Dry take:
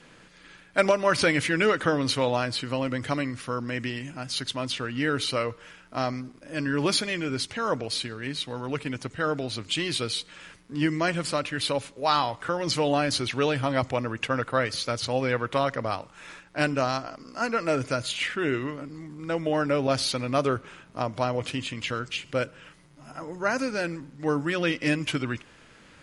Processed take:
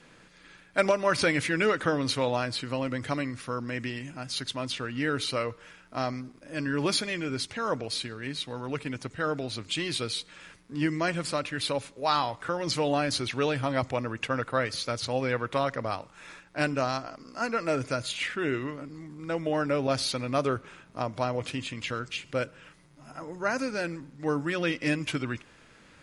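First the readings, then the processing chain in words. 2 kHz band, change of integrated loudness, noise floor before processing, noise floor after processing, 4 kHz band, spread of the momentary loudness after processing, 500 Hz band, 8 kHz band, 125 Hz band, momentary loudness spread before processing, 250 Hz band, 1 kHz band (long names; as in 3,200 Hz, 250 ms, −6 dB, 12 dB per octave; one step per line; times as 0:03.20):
−2.5 dB, −2.5 dB, −54 dBFS, −56 dBFS, −3.0 dB, 9 LU, −2.5 dB, −2.5 dB, −2.5 dB, 9 LU, −2.5 dB, −2.5 dB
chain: notch filter 3,000 Hz, Q 23
level −2.5 dB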